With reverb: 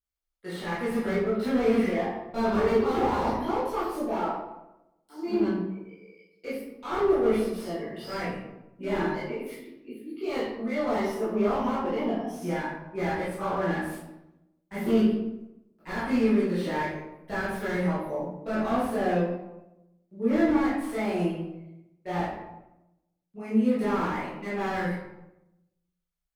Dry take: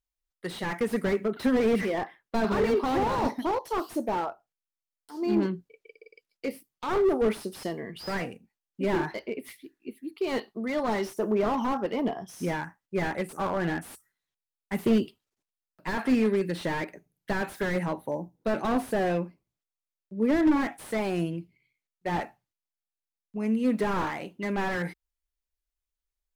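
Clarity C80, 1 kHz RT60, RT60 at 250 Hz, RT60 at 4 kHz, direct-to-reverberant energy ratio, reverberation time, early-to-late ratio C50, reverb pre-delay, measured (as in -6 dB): 4.0 dB, 0.90 s, 1.1 s, 0.55 s, -11.5 dB, 0.95 s, 1.0 dB, 13 ms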